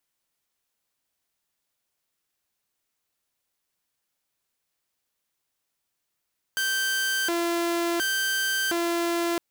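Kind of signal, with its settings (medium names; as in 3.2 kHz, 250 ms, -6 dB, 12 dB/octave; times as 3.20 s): siren hi-lo 341–1560 Hz 0.7 per s saw -21 dBFS 2.81 s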